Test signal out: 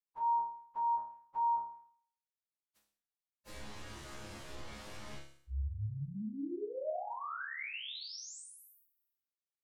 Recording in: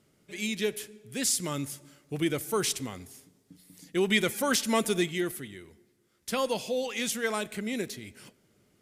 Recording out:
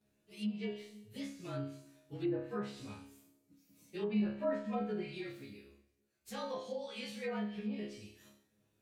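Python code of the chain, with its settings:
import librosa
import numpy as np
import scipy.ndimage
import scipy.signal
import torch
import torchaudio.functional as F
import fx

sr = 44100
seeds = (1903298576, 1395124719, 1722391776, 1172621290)

y = fx.partial_stretch(x, sr, pct=109)
y = fx.resonator_bank(y, sr, root=37, chord='fifth', decay_s=0.56)
y = fx.env_lowpass_down(y, sr, base_hz=1200.0, full_db=-38.5)
y = y * 10.0 ** (6.5 / 20.0)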